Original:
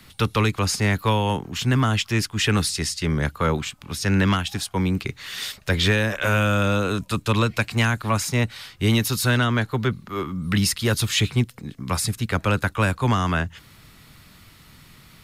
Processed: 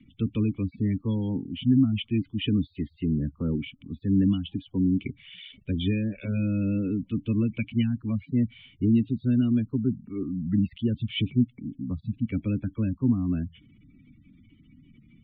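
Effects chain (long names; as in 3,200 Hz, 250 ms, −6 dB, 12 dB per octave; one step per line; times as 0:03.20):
gate on every frequency bin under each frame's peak −15 dB strong
formant resonators in series i
level +6 dB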